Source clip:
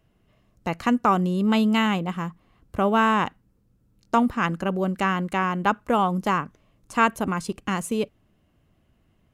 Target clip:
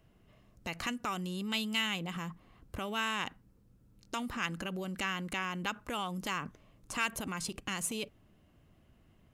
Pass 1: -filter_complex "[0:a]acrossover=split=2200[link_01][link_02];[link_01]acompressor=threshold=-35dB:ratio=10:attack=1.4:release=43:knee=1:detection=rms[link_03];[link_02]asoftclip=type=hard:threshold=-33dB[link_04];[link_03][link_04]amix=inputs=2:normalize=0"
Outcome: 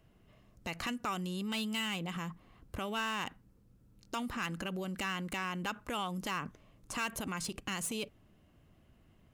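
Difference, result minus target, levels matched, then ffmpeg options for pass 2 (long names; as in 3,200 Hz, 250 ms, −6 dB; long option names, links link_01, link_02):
hard clipping: distortion +16 dB
-filter_complex "[0:a]acrossover=split=2200[link_01][link_02];[link_01]acompressor=threshold=-35dB:ratio=10:attack=1.4:release=43:knee=1:detection=rms[link_03];[link_02]asoftclip=type=hard:threshold=-22.5dB[link_04];[link_03][link_04]amix=inputs=2:normalize=0"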